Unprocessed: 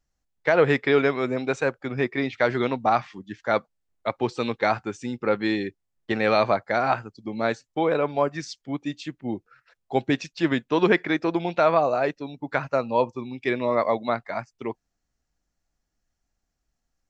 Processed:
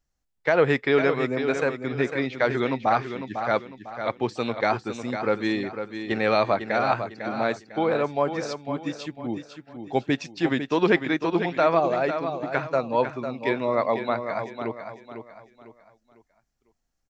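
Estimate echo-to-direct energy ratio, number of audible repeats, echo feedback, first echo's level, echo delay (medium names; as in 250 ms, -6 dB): -8.0 dB, 3, 35%, -8.5 dB, 501 ms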